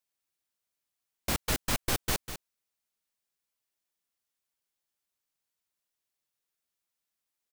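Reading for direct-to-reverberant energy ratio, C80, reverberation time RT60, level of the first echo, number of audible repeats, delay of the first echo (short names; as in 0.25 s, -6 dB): none, none, none, -10.5 dB, 1, 0.198 s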